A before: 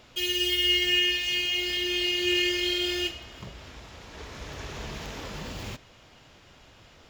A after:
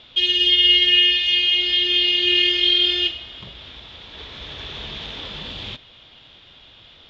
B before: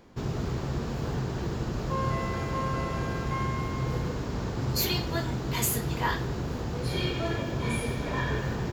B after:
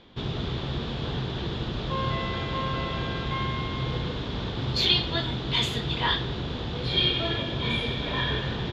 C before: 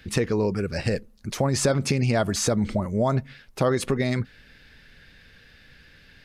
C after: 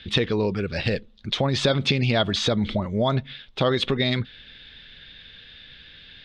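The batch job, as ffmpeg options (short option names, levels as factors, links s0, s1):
-af "lowpass=f=3500:t=q:w=7.2"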